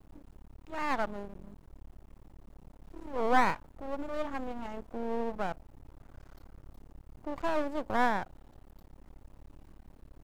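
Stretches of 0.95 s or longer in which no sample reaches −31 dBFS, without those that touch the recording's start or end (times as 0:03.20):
0:01.25–0:03.14
0:05.52–0:07.27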